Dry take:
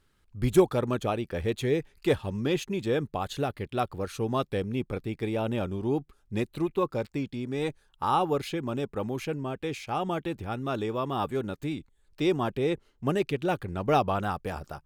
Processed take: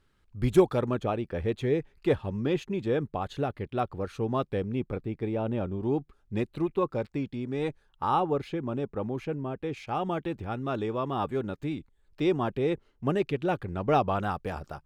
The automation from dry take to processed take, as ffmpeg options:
ffmpeg -i in.wav -af "asetnsamples=nb_out_samples=441:pad=0,asendcmd='0.89 lowpass f 1900;4.96 lowpass f 1100;5.83 lowpass f 2500;8.2 lowpass f 1300;9.77 lowpass f 2800;14.12 lowpass f 4500',lowpass=frequency=4400:poles=1" out.wav

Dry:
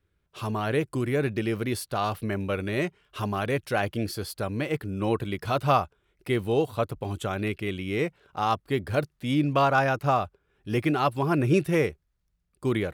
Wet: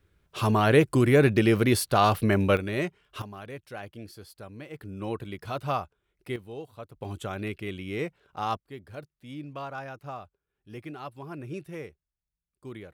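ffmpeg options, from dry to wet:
ffmpeg -i in.wav -af "asetnsamples=nb_out_samples=441:pad=0,asendcmd='2.57 volume volume -1.5dB;3.22 volume volume -13.5dB;4.79 volume volume -7dB;6.36 volume volume -15.5dB;7.01 volume volume -4.5dB;8.57 volume volume -15.5dB',volume=6.5dB" out.wav

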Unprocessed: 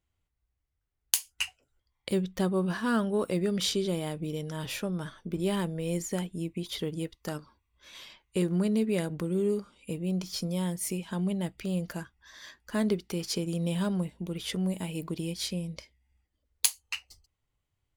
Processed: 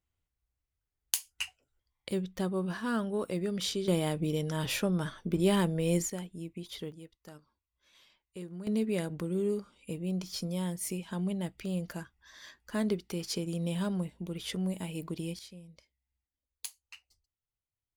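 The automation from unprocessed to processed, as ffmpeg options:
ffmpeg -i in.wav -af "asetnsamples=nb_out_samples=441:pad=0,asendcmd='3.88 volume volume 3dB;6.1 volume volume -7dB;6.92 volume volume -15dB;8.67 volume volume -3dB;15.39 volume volume -16dB',volume=-4.5dB" out.wav

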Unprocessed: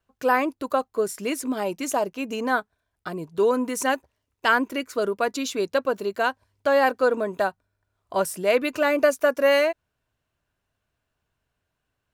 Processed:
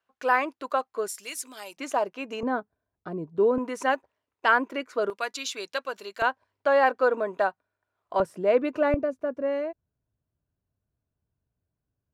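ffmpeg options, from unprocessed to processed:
ffmpeg -i in.wav -af "asetnsamples=nb_out_samples=441:pad=0,asendcmd='1.08 bandpass f 6900;1.77 bandpass f 1200;2.43 bandpass f 260;3.58 bandpass f 920;5.1 bandpass f 3400;6.22 bandpass f 1000;8.2 bandpass f 400;8.94 bandpass f 110',bandpass=frequency=1600:width_type=q:width=0.51:csg=0" out.wav

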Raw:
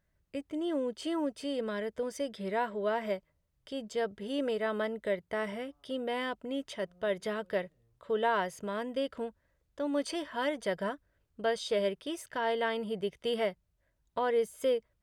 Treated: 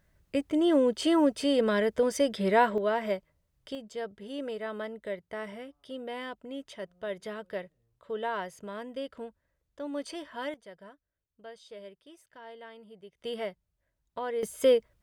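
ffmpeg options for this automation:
ffmpeg -i in.wav -af "asetnsamples=nb_out_samples=441:pad=0,asendcmd='2.78 volume volume 3dB;3.75 volume volume -4dB;10.54 volume volume -16dB;13.18 volume volume -4dB;14.43 volume volume 7dB',volume=9dB" out.wav

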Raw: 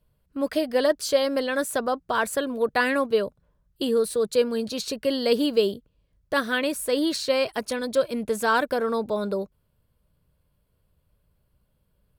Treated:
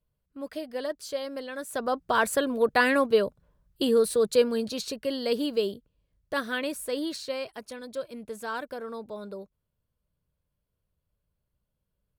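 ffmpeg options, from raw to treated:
ffmpeg -i in.wav -af "volume=0.5dB,afade=type=in:start_time=1.64:duration=0.41:silence=0.266073,afade=type=out:start_time=4.3:duration=0.74:silence=0.501187,afade=type=out:start_time=6.72:duration=0.83:silence=0.473151" out.wav

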